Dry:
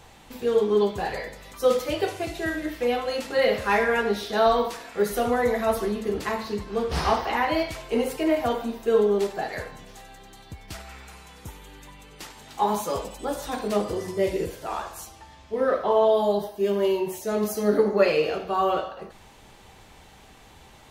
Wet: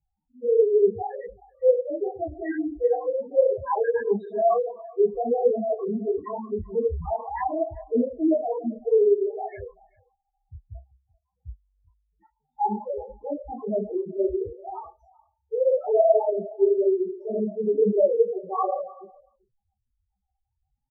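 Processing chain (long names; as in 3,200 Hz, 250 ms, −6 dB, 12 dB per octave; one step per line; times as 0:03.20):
noise gate −37 dBFS, range −24 dB
spectral peaks only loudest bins 2
high-frequency loss of the air 440 metres
single-tap delay 387 ms −23 dB
micro pitch shift up and down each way 51 cents
level +8.5 dB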